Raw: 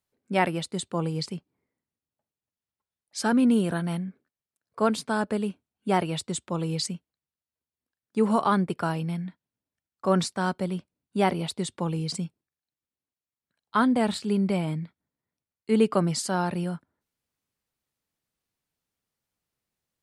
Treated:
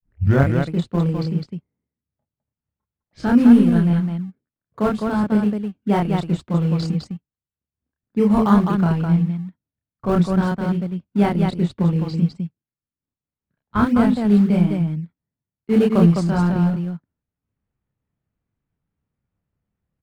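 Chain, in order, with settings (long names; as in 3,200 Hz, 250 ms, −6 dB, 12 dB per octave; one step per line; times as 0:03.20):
turntable start at the beginning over 0.53 s
low-pass that shuts in the quiet parts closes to 2,000 Hz, open at −20 dBFS
transient designer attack 0 dB, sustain −7 dB
in parallel at −12 dB: sample-and-hold swept by an LFO 31×, swing 100% 3.5 Hz
on the sum: bass and treble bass +11 dB, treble −7 dB
on a send: loudspeakers that aren't time-aligned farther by 10 metres −2 dB, 71 metres −4 dB
on the sum: level −1 dB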